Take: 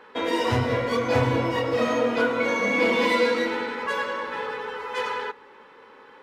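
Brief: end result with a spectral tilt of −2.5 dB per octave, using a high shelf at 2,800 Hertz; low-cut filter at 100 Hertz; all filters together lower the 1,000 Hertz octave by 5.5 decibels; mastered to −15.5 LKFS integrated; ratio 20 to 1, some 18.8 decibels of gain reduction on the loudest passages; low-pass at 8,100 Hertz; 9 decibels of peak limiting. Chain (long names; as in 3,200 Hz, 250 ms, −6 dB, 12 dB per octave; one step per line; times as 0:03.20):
high-pass filter 100 Hz
low-pass filter 8,100 Hz
parametric band 1,000 Hz −7.5 dB
high-shelf EQ 2,800 Hz +7 dB
downward compressor 20 to 1, threshold −37 dBFS
level +27.5 dB
brickwall limiter −6.5 dBFS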